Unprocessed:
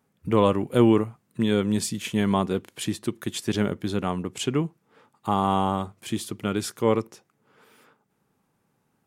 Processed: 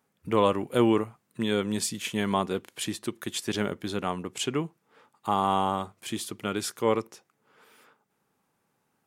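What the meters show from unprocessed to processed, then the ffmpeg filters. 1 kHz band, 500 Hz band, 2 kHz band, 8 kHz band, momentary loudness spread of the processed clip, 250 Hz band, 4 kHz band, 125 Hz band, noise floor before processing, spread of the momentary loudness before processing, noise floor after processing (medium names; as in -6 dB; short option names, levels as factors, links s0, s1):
-1.0 dB, -3.0 dB, 0.0 dB, 0.0 dB, 10 LU, -5.0 dB, 0.0 dB, -7.5 dB, -72 dBFS, 11 LU, -75 dBFS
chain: -af "lowshelf=f=300:g=-9"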